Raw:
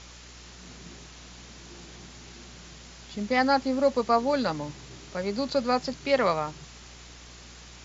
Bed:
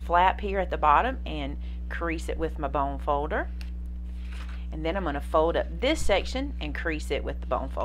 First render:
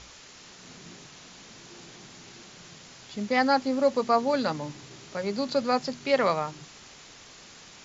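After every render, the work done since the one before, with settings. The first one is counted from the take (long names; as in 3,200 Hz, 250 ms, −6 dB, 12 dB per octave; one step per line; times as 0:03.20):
hum removal 60 Hz, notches 6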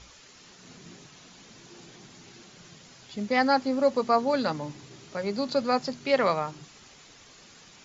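broadband denoise 6 dB, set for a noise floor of −50 dBFS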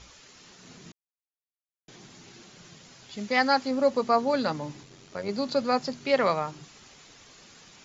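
0:00.92–0:01.88: silence
0:03.13–0:03.71: tilt shelving filter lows −3.5 dB, about 890 Hz
0:04.83–0:05.29: amplitude modulation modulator 92 Hz, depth 50%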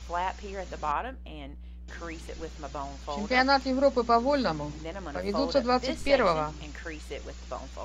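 mix in bed −9.5 dB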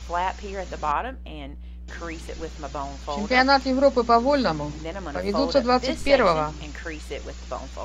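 level +5 dB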